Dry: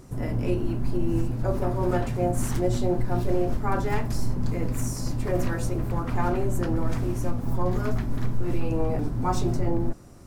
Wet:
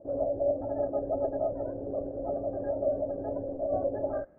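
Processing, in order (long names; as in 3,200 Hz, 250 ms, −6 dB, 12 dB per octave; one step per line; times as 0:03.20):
formant resonators in series u
notch comb filter 200 Hz
formants moved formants −4 semitones
low-pass filter sweep 260 Hz → 1,100 Hz, 0:09.40–0:10.12
wrong playback speed 33 rpm record played at 78 rpm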